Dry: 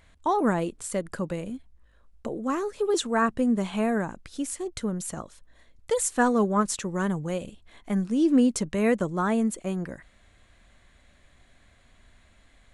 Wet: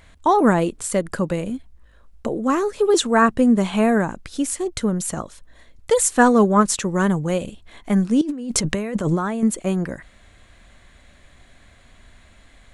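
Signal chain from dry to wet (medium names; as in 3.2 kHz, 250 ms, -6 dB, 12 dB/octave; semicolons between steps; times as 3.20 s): 8.21–9.43 s: compressor with a negative ratio -32 dBFS, ratio -1; trim +8 dB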